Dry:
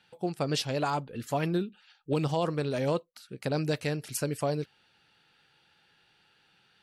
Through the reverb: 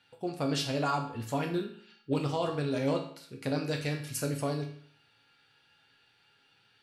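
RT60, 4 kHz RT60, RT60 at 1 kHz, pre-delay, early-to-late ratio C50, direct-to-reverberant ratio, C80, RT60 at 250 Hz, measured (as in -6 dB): 0.55 s, 0.55 s, 0.55 s, 4 ms, 8.0 dB, 0.5 dB, 11.5 dB, 0.60 s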